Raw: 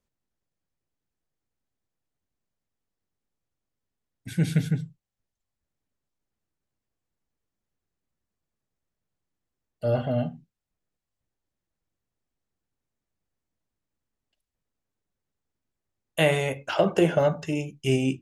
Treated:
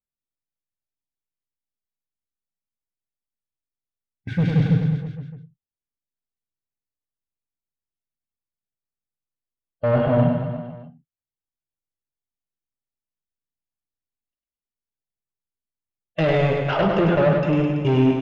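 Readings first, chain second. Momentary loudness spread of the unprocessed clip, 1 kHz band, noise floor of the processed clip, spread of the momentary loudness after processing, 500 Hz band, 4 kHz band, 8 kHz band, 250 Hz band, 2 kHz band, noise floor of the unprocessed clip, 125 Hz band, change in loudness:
11 LU, +6.5 dB, under -85 dBFS, 15 LU, +4.5 dB, -1.0 dB, under -15 dB, +7.0 dB, +2.5 dB, under -85 dBFS, +7.5 dB, +5.5 dB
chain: gate -42 dBFS, range -27 dB; harmonic-percussive split percussive -6 dB; high shelf 6900 Hz -6.5 dB; in parallel at -2 dB: limiter -22 dBFS, peak gain reduction 11.5 dB; on the sum: soft clip -22.5 dBFS, distortion -9 dB; air absorption 240 m; on a send: reverse bouncing-ball echo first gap 0.1 s, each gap 1.1×, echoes 5; on the sum: gain +7.5 dB

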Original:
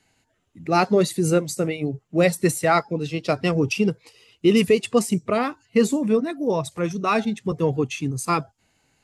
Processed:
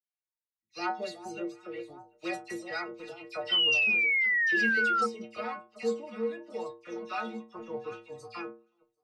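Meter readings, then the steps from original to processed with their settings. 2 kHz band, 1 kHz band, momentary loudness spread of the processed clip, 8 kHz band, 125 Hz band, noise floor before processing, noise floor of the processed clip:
+3.5 dB, -10.0 dB, 19 LU, -18.5 dB, under -25 dB, -70 dBFS, under -85 dBFS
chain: vibrato 4.1 Hz 23 cents; echo with dull and thin repeats by turns 0.371 s, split 1000 Hz, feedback 68%, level -8.5 dB; gate -25 dBFS, range -28 dB; three-band isolator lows -12 dB, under 450 Hz, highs -22 dB, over 5500 Hz; metallic resonator 110 Hz, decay 0.43 s, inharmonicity 0.008; painted sound fall, 3.49–5.01, 1300–3100 Hz -27 dBFS; dynamic EQ 5000 Hz, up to +8 dB, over -50 dBFS, Q 1.3; dispersion lows, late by 72 ms, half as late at 2200 Hz

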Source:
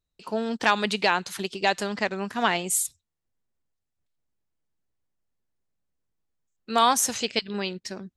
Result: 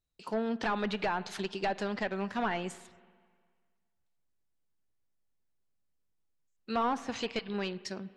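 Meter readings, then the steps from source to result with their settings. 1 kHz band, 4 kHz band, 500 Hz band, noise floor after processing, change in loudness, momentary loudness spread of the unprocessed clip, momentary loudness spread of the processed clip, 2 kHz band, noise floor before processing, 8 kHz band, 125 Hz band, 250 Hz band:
-9.0 dB, -12.5 dB, -6.0 dB, -77 dBFS, -9.0 dB, 11 LU, 5 LU, -10.0 dB, -83 dBFS, -23.0 dB, -4.0 dB, -4.0 dB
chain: overloaded stage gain 22 dB; treble ducked by the level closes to 410 Hz, closed at -18.5 dBFS; spring tank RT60 1.8 s, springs 41/52/56 ms, chirp 45 ms, DRR 17.5 dB; gain -3.5 dB

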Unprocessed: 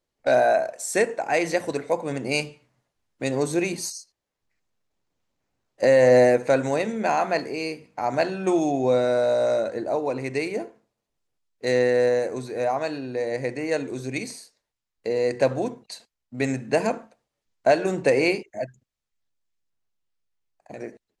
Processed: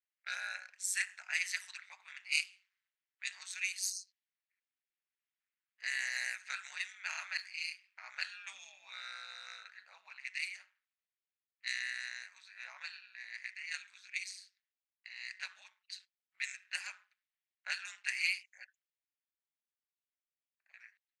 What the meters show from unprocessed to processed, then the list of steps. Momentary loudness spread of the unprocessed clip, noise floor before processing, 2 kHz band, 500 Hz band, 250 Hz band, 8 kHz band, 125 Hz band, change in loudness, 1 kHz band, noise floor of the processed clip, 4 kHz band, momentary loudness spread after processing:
15 LU, -84 dBFS, -7.0 dB, under -40 dB, under -40 dB, -6.0 dB, under -40 dB, -16.0 dB, -27.0 dB, under -85 dBFS, -5.0 dB, 17 LU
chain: inverse Chebyshev high-pass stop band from 510 Hz, stop band 60 dB; ring modulator 94 Hz; low-pass opened by the level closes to 2300 Hz, open at -31 dBFS; gain -2 dB

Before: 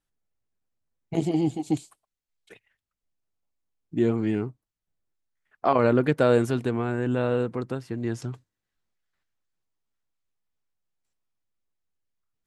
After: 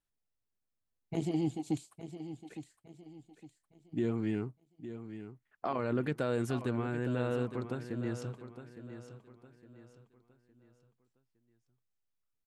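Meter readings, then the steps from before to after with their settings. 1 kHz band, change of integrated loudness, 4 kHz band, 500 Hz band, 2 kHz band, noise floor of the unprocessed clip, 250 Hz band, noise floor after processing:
-11.5 dB, -10.5 dB, -8.0 dB, -11.0 dB, -9.0 dB, under -85 dBFS, -8.5 dB, -84 dBFS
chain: dynamic EQ 590 Hz, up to -3 dB, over -31 dBFS, Q 0.8; limiter -16 dBFS, peak gain reduction 6.5 dB; feedback echo 0.861 s, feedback 36%, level -11.5 dB; gain -6.5 dB

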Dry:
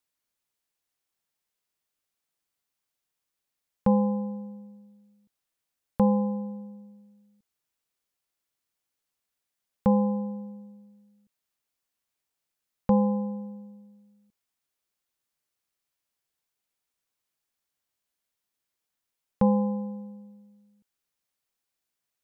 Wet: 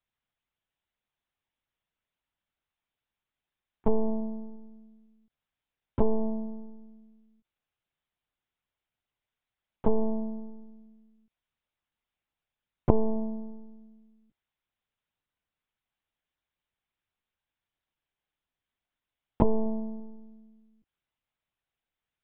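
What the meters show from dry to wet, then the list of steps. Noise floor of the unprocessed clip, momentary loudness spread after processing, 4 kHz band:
-85 dBFS, 19 LU, n/a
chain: monotone LPC vocoder at 8 kHz 220 Hz

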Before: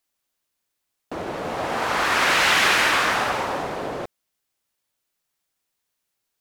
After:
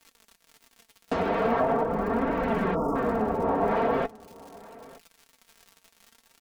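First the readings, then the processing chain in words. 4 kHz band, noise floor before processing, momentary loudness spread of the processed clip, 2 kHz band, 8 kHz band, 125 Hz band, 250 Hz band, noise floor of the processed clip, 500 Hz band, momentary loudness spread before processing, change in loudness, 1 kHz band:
-23.5 dB, -79 dBFS, 4 LU, -16.0 dB, under -20 dB, +3.0 dB, +5.5 dB, -68 dBFS, +3.0 dB, 17 LU, -6.5 dB, -4.0 dB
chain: treble ducked by the level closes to 430 Hz, closed at -20.5 dBFS; crackle 87/s -43 dBFS; spectral delete 2.75–2.96, 1400–4900 Hz; flange 0.43 Hz, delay 3.1 ms, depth 7.9 ms, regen +47%; bell 71 Hz +3 dB; in parallel at +1 dB: compressor, threshold -36 dBFS, peak gain reduction 8 dB; on the sum: comb 4.4 ms, depth 74%; vocal rider 2 s; on a send: echo 0.92 s -22 dB; on the sum: gain +3.5 dB

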